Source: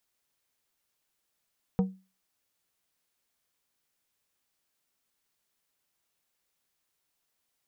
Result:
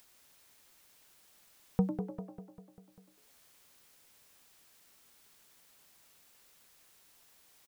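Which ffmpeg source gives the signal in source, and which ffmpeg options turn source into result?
-f lavfi -i "aevalsrc='0.119*pow(10,-3*t/0.31)*sin(2*PI*189*t)+0.0501*pow(10,-3*t/0.163)*sin(2*PI*472.5*t)+0.0211*pow(10,-3*t/0.117)*sin(2*PI*756*t)+0.00891*pow(10,-3*t/0.1)*sin(2*PI*945*t)+0.00376*pow(10,-3*t/0.084)*sin(2*PI*1228.5*t)':d=0.89:s=44100"
-filter_complex "[0:a]asplit=2[a][b];[b]aecho=0:1:198|396|594|792|990|1188:0.355|0.185|0.0959|0.0499|0.0259|0.0135[c];[a][c]amix=inputs=2:normalize=0,acompressor=mode=upward:threshold=-50dB:ratio=2.5,asplit=2[d][e];[e]asplit=5[f][g][h][i][j];[f]adelay=98,afreqshift=120,volume=-10.5dB[k];[g]adelay=196,afreqshift=240,volume=-16.9dB[l];[h]adelay=294,afreqshift=360,volume=-23.3dB[m];[i]adelay=392,afreqshift=480,volume=-29.6dB[n];[j]adelay=490,afreqshift=600,volume=-36dB[o];[k][l][m][n][o]amix=inputs=5:normalize=0[p];[d][p]amix=inputs=2:normalize=0"

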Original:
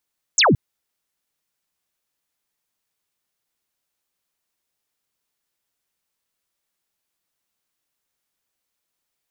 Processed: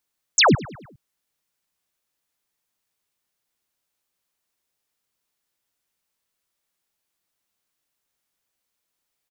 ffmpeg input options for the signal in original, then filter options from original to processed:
-f lavfi -i "aevalsrc='0.266*clip(t/0.002,0,1)*clip((0.17-t)/0.002,0,1)*sin(2*PI*8000*0.17/log(100/8000)*(exp(log(100/8000)*t/0.17)-1))':d=0.17:s=44100"
-filter_complex "[0:a]asplit=2[a][b];[b]adelay=102,lowpass=f=3.4k:p=1,volume=-18dB,asplit=2[c][d];[d]adelay=102,lowpass=f=3.4k:p=1,volume=0.53,asplit=2[e][f];[f]adelay=102,lowpass=f=3.4k:p=1,volume=0.53,asplit=2[g][h];[h]adelay=102,lowpass=f=3.4k:p=1,volume=0.53[i];[a][c][e][g][i]amix=inputs=5:normalize=0"

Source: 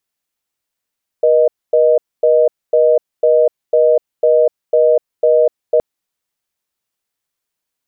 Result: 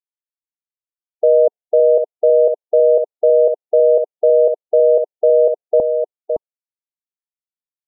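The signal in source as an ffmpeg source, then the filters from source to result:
-f lavfi -i "aevalsrc='0.299*(sin(2*PI*480*t)+sin(2*PI*620*t))*clip(min(mod(t,0.5),0.25-mod(t,0.5))/0.005,0,1)':d=4.57:s=44100"
-filter_complex "[0:a]afftdn=nr=29:nf=-23,asplit=2[a][b];[b]aecho=0:1:564:0.473[c];[a][c]amix=inputs=2:normalize=0"

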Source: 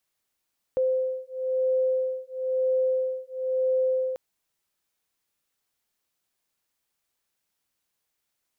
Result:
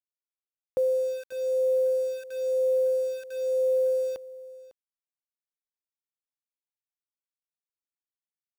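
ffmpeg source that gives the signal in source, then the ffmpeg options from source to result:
-f lavfi -i "aevalsrc='0.0501*(sin(2*PI*517*t)+sin(2*PI*518*t))':d=3.39:s=44100"
-af "highpass=f=76:p=1,aeval=exprs='val(0)*gte(abs(val(0)),0.0106)':c=same,aecho=1:1:552:0.112"

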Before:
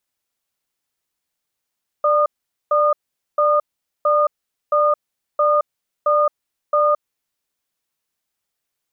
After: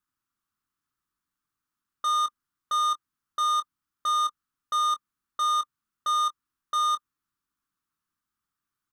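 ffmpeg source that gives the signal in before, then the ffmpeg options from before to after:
-f lavfi -i "aevalsrc='0.168*(sin(2*PI*592*t)+sin(2*PI*1220*t))*clip(min(mod(t,0.67),0.22-mod(t,0.67))/0.005,0,1)':d=5.15:s=44100"
-filter_complex "[0:a]firequalizer=gain_entry='entry(300,0);entry(540,-20);entry(1200,5);entry(2100,-10)':delay=0.05:min_phase=1,asoftclip=type=tanh:threshold=-25dB,asplit=2[a][b];[b]adelay=23,volume=-11dB[c];[a][c]amix=inputs=2:normalize=0"

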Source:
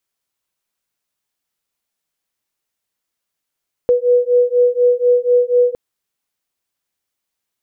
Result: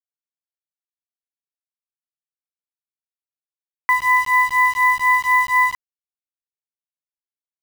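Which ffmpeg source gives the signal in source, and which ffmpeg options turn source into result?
-f lavfi -i "aevalsrc='0.211*(sin(2*PI*488*t)+sin(2*PI*492.1*t))':d=1.86:s=44100"
-af "acrusher=bits=4:mix=0:aa=0.000001,aeval=exprs='val(0)*sin(2*PI*1500*n/s)':c=same"

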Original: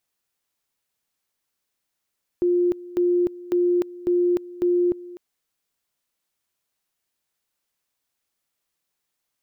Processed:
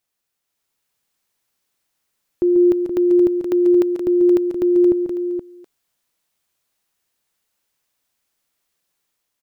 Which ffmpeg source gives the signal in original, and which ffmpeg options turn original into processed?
-f lavfi -i "aevalsrc='pow(10,(-16.5-19*gte(mod(t,0.55),0.3))/20)*sin(2*PI*353*t)':d=2.75:s=44100"
-filter_complex "[0:a]dynaudnorm=f=430:g=3:m=4.5dB,asplit=2[a][b];[b]aecho=0:1:136|142|474:0.15|0.335|0.422[c];[a][c]amix=inputs=2:normalize=0"

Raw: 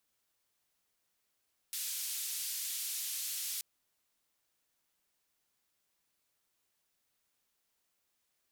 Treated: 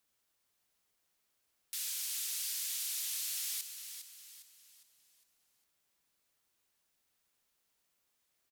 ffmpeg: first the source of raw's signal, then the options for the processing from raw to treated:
-f lavfi -i "anoisesrc=c=white:d=1.88:r=44100:seed=1,highpass=f=3400,lowpass=f=15000,volume=-30.7dB"
-filter_complex "[0:a]asplit=6[a][b][c][d][e][f];[b]adelay=406,afreqshift=-44,volume=-9dB[g];[c]adelay=812,afreqshift=-88,volume=-16.7dB[h];[d]adelay=1218,afreqshift=-132,volume=-24.5dB[i];[e]adelay=1624,afreqshift=-176,volume=-32.2dB[j];[f]adelay=2030,afreqshift=-220,volume=-40dB[k];[a][g][h][i][j][k]amix=inputs=6:normalize=0"

